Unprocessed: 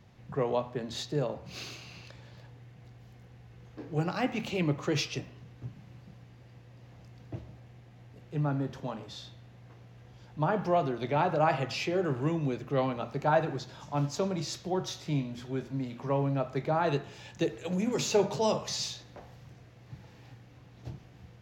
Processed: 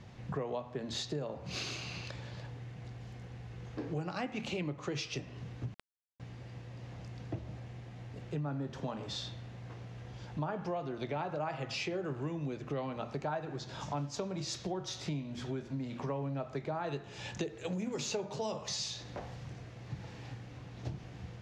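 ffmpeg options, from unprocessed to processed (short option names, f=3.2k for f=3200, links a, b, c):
-filter_complex "[0:a]asettb=1/sr,asplit=3[a][b][c];[a]atrim=end=5.744[d];[b]atrim=start=5.74:end=6.2,asetpts=PTS-STARTPTS,afade=t=in:d=0.004:c=qsin,afade=t=out:st=0.456:d=0.004:c=qsin,acrusher=bits=4:dc=4:mix=0:aa=0.000001[e];[c]atrim=start=6.196[f];[d][e]acrossfade=d=0.004:c1=hsin:c2=qsin[g];[g][f]acrossfade=d=0.004:c1=qsin:c2=hsin,lowpass=f=9.7k:w=0.5412,lowpass=f=9.7k:w=1.3066,acompressor=threshold=-41dB:ratio=6,volume=6dB"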